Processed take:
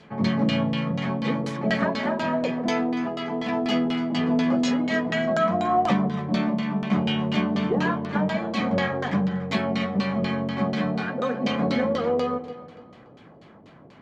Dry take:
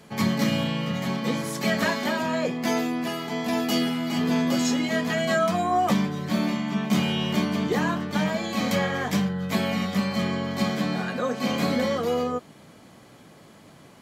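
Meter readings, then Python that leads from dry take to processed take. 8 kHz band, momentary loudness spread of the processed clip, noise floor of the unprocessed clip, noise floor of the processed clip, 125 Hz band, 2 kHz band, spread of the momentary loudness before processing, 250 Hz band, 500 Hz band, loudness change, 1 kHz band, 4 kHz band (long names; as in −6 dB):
below −10 dB, 4 LU, −50 dBFS, −49 dBFS, +0.5 dB, −1.0 dB, 4 LU, +1.0 dB, +1.0 dB, +0.5 dB, +1.0 dB, −2.5 dB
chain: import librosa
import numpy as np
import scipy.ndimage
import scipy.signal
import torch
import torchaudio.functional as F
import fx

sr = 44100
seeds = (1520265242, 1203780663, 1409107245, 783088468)

y = fx.filter_lfo_lowpass(x, sr, shape='saw_down', hz=4.1, low_hz=440.0, high_hz=4600.0, q=1.2)
y = fx.echo_alternate(y, sr, ms=144, hz=840.0, feedback_pct=56, wet_db=-10)
y = fx.dynamic_eq(y, sr, hz=6600.0, q=0.71, threshold_db=-46.0, ratio=4.0, max_db=4)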